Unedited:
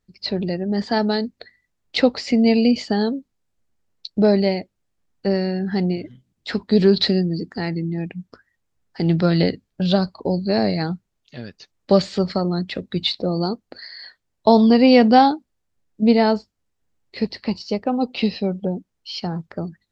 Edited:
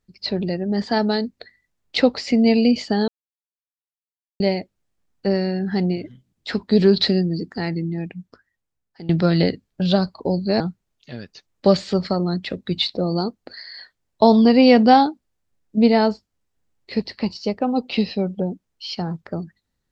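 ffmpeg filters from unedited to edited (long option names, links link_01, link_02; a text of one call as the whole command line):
ffmpeg -i in.wav -filter_complex "[0:a]asplit=5[link_01][link_02][link_03][link_04][link_05];[link_01]atrim=end=3.08,asetpts=PTS-STARTPTS,afade=type=out:start_time=3.076:duration=0.004:curve=hsin[link_06];[link_02]atrim=start=3.08:end=4.4,asetpts=PTS-STARTPTS,volume=0[link_07];[link_03]atrim=start=4.4:end=9.09,asetpts=PTS-STARTPTS,afade=type=in:duration=0.004:curve=hsin,afade=type=out:start_time=3.39:duration=1.3:silence=0.149624[link_08];[link_04]atrim=start=9.09:end=10.602,asetpts=PTS-STARTPTS,afade=type=in:duration=0.004:curve=hsin:silence=0.149624[link_09];[link_05]atrim=start=10.848[link_10];[link_06][link_07][link_08][link_09]concat=n=4:v=0:a=1[link_11];[link_11][link_10]acrossfade=duration=0.004:curve1=hsin:curve2=hsin" out.wav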